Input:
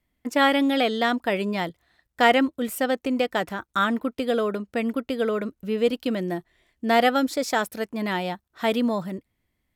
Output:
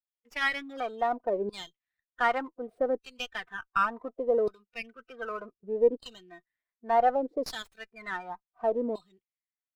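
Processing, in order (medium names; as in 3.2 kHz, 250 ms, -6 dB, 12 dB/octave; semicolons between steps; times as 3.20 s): LFO band-pass saw down 0.67 Hz 380–4400 Hz; spectral noise reduction 20 dB; sliding maximum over 3 samples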